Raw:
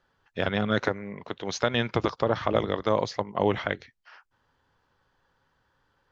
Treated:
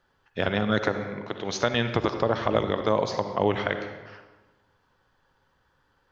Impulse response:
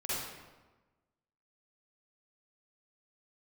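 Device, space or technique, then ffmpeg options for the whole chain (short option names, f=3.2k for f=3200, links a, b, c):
ducked reverb: -filter_complex "[0:a]asplit=3[a][b][c];[1:a]atrim=start_sample=2205[d];[b][d]afir=irnorm=-1:irlink=0[e];[c]apad=whole_len=269563[f];[e][f]sidechaincompress=threshold=-26dB:ratio=8:attack=30:release=223,volume=-9.5dB[g];[a][g]amix=inputs=2:normalize=0"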